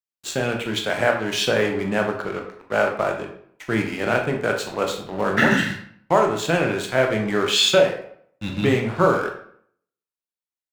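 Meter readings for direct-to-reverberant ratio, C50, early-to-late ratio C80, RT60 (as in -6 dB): 1.5 dB, 6.0 dB, 10.5 dB, 0.65 s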